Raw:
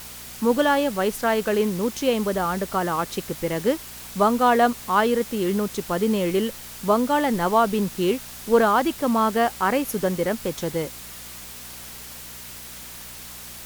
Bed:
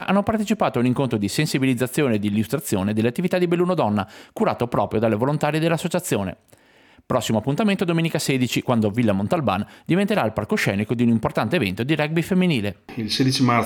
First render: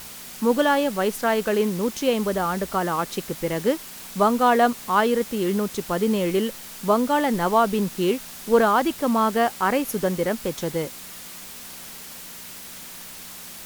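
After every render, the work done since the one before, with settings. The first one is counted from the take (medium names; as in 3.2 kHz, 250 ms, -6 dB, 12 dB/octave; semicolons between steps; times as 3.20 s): de-hum 60 Hz, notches 2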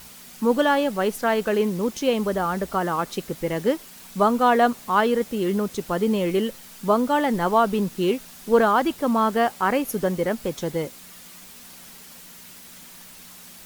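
noise reduction 6 dB, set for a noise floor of -40 dBFS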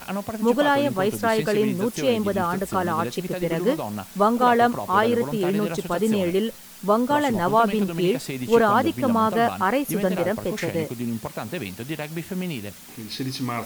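add bed -10 dB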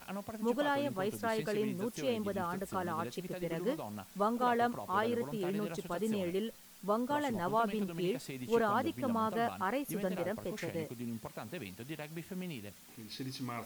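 trim -13 dB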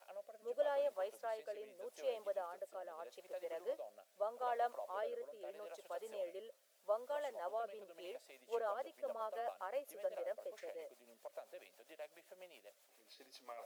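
rotary cabinet horn 0.8 Hz, later 7.5 Hz, at 7.78 s; ladder high-pass 540 Hz, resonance 70%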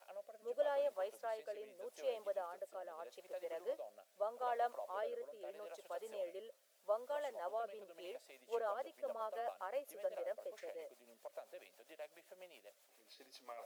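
no audible change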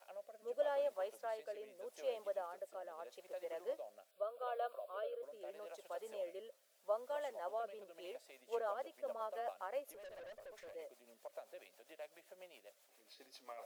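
4.11–5.23 s: static phaser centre 1.3 kHz, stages 8; 9.92–10.73 s: valve stage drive 50 dB, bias 0.25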